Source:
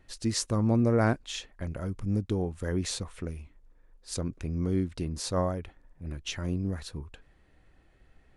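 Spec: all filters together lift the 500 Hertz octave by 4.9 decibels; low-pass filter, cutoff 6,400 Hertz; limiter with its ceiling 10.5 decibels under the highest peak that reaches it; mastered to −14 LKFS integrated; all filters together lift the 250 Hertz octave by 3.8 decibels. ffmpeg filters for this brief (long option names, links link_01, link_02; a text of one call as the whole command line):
ffmpeg -i in.wav -af "lowpass=6400,equalizer=frequency=250:width_type=o:gain=3.5,equalizer=frequency=500:width_type=o:gain=5,volume=18.5dB,alimiter=limit=-3dB:level=0:latency=1" out.wav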